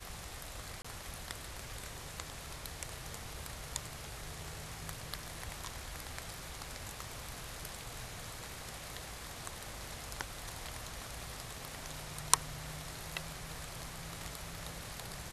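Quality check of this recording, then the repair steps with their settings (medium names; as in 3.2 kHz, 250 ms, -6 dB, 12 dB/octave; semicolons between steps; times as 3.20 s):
0.82–0.84 s: dropout 25 ms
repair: interpolate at 0.82 s, 25 ms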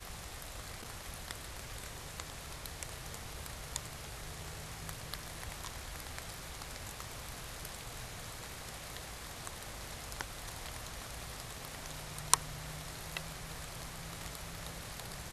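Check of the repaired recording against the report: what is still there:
nothing left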